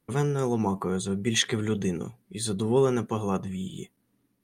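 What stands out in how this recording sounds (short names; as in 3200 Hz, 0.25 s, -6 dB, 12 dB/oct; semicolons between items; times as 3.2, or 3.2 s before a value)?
noise floor -73 dBFS; spectral tilt -5.0 dB/oct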